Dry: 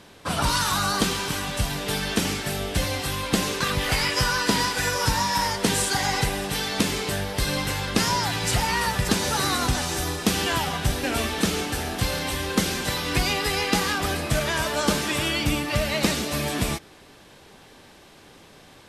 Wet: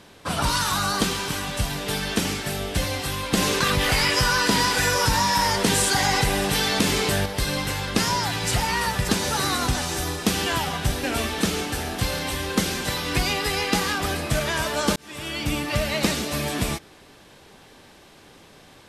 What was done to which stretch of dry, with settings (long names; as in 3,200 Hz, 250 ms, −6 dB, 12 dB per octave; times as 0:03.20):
0:03.37–0:07.26: envelope flattener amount 50%
0:14.96–0:15.63: fade in